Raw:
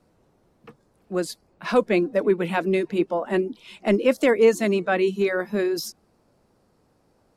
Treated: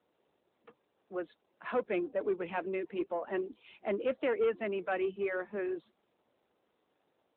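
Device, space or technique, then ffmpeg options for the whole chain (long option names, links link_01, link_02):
telephone: -filter_complex "[0:a]asplit=3[link_01][link_02][link_03];[link_01]afade=type=out:start_time=1.14:duration=0.02[link_04];[link_02]lowpass=frequency=9900:width=0.5412,lowpass=frequency=9900:width=1.3066,afade=type=in:start_time=1.14:duration=0.02,afade=type=out:start_time=1.99:duration=0.02[link_05];[link_03]afade=type=in:start_time=1.99:duration=0.02[link_06];[link_04][link_05][link_06]amix=inputs=3:normalize=0,highpass=320,lowpass=3200,asoftclip=type=tanh:threshold=-15dB,volume=-8.5dB" -ar 8000 -c:a libopencore_amrnb -b:a 12200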